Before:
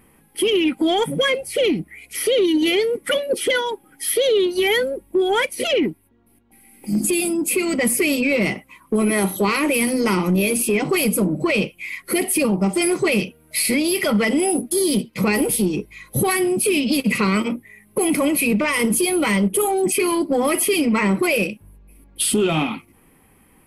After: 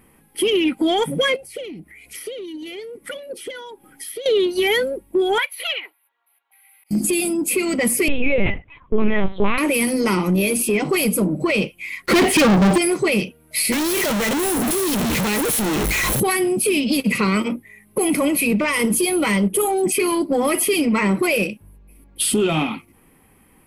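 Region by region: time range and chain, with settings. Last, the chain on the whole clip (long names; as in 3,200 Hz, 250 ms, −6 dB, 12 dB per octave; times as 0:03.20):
0:01.36–0:04.26: downward compressor 2 to 1, threshold −45 dBFS + transient designer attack +8 dB, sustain +4 dB
0:05.38–0:06.91: high-pass filter 860 Hz 24 dB per octave + flat-topped bell 6,800 Hz −14 dB 1.1 octaves + volume swells 245 ms
0:08.08–0:09.58: linear-prediction vocoder at 8 kHz pitch kept + low-shelf EQ 170 Hz +6 dB
0:12.06–0:12.78: low-pass filter 3,900 Hz + leveller curve on the samples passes 5
0:13.72–0:16.20: sign of each sample alone + notch filter 4,800 Hz, Q 16
whole clip: no processing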